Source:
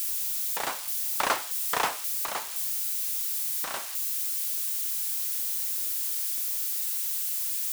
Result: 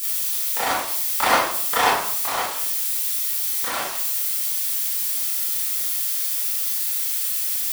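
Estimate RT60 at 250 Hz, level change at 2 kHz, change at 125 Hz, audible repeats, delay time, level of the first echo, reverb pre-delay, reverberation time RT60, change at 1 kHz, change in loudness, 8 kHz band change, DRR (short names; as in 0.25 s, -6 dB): 0.70 s, +9.0 dB, n/a, none, none, none, 22 ms, 0.60 s, +10.0 dB, +6.5 dB, +6.0 dB, -9.0 dB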